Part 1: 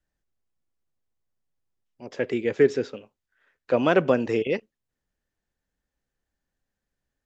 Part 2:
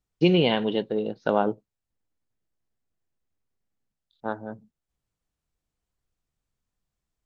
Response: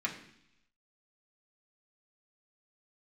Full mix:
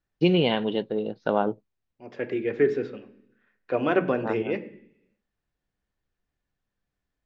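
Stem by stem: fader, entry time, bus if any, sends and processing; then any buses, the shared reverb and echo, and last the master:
-5.0 dB, 0.00 s, send -6 dB, treble shelf 3.9 kHz -11 dB
-1.0 dB, 0.00 s, no send, none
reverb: on, RT60 0.70 s, pre-delay 3 ms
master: low-pass 5 kHz 12 dB/octave

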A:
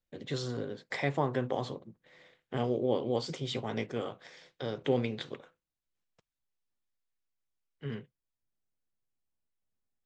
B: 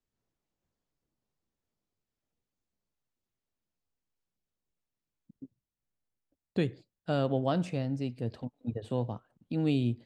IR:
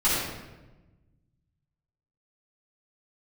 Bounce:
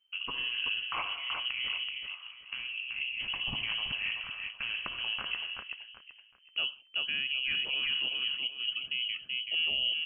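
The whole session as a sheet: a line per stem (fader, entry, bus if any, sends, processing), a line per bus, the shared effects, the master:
+1.5 dB, 0.00 s, send -19.5 dB, echo send -5.5 dB, local Wiener filter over 15 samples; band-stop 550 Hz, Q 12; compressor with a negative ratio -39 dBFS, ratio -1
0.0 dB, 0.00 s, no send, echo send -5 dB, none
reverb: on, RT60 1.1 s, pre-delay 3 ms
echo: feedback delay 380 ms, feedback 29%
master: frequency inversion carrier 3.1 kHz; peak limiter -22.5 dBFS, peak gain reduction 6.5 dB

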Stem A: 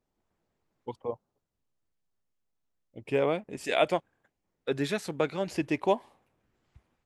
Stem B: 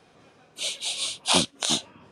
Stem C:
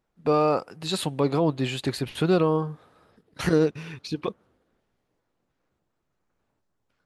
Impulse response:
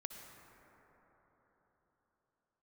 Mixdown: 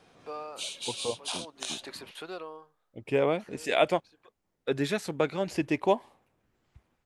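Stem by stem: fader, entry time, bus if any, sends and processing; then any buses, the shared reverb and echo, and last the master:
+1.0 dB, 0.00 s, no send, none
-2.5 dB, 0.00 s, no send, compression 6:1, threshold -31 dBFS, peak gain reduction 14.5 dB
-8.0 dB, 0.00 s, no send, high-pass 580 Hz 12 dB/octave; auto duck -17 dB, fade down 0.80 s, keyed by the first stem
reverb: none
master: none

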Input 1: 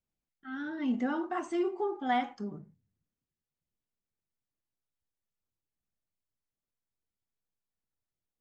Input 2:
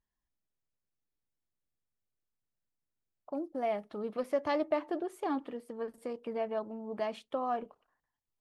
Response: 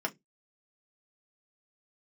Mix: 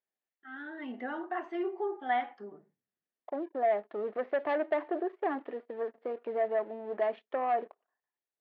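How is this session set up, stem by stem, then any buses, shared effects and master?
-4.5 dB, 0.00 s, no send, none
-4.5 dB, 0.00 s, no send, low-pass 1.3 kHz 6 dB/octave; waveshaping leveller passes 2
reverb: none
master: cabinet simulation 360–3600 Hz, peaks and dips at 390 Hz +6 dB, 690 Hz +6 dB, 1.8 kHz +8 dB

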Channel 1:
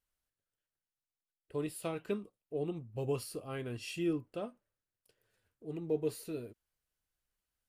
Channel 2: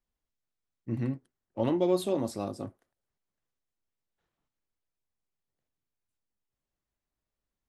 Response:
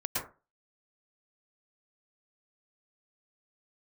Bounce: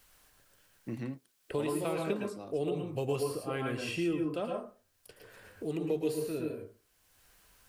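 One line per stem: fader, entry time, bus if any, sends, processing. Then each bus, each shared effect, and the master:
+0.5 dB, 0.00 s, send -3 dB, none
2.25 s -10 dB -> 2.77 s -20.5 dB, 0.00 s, no send, none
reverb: on, RT60 0.30 s, pre-delay 102 ms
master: bass shelf 430 Hz -4.5 dB; three bands compressed up and down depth 70%

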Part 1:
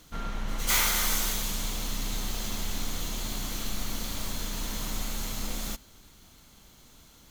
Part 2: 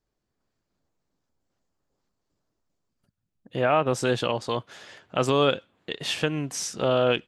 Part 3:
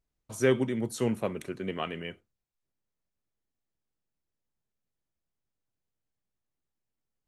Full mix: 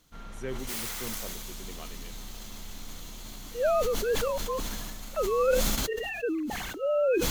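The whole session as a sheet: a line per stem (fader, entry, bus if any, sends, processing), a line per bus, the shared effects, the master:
-10.0 dB, 0.00 s, no send, integer overflow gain 19 dB
-3.0 dB, 0.00 s, no send, formants replaced by sine waves; low-pass 1 kHz 6 dB/octave
-13.0 dB, 0.00 s, no send, none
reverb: none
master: decay stretcher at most 22 dB/s

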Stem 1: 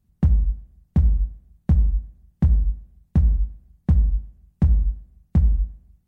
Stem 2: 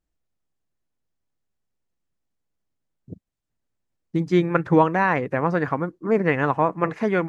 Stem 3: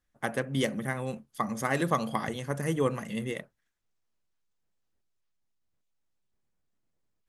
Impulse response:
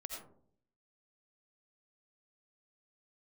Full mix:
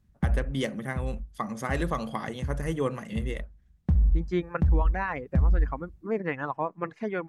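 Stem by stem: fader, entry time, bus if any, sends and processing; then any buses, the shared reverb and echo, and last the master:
+2.5 dB, 0.00 s, no send, auto duck -18 dB, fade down 0.60 s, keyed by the third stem
-8.5 dB, 0.00 s, no send, reverb removal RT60 1.3 s
-1.0 dB, 0.00 s, no send, none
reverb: none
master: treble shelf 9.6 kHz -10 dB; peak limiter -15.5 dBFS, peak gain reduction 10 dB

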